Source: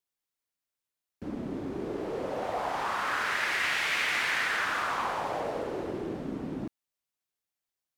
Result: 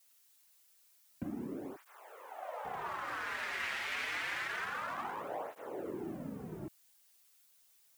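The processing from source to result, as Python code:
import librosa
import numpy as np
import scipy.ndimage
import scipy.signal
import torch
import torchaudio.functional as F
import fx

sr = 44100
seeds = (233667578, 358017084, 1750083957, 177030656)

y = fx.wiener(x, sr, points=9)
y = fx.recorder_agc(y, sr, target_db=-25.5, rise_db_per_s=13.0, max_gain_db=30)
y = fx.highpass(y, sr, hz=fx.line((1.75, 1100.0), (2.64, 500.0)), slope=24, at=(1.75, 2.64), fade=0.02)
y = fx.dmg_noise_colour(y, sr, seeds[0], colour='blue', level_db=-58.0)
y = fx.flanger_cancel(y, sr, hz=0.27, depth_ms=6.9)
y = F.gain(torch.from_numpy(y), -5.5).numpy()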